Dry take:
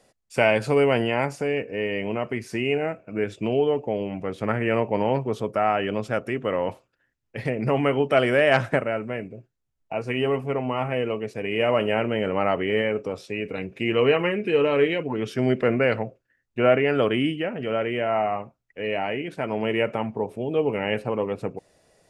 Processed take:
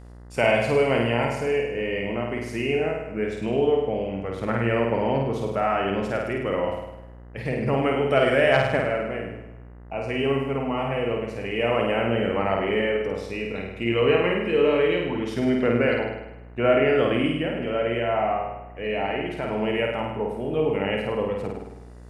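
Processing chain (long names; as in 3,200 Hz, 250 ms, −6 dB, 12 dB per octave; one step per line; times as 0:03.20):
flutter between parallel walls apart 8.8 metres, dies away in 0.92 s
hum with harmonics 60 Hz, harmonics 34, −41 dBFS −7 dB per octave
level −2.5 dB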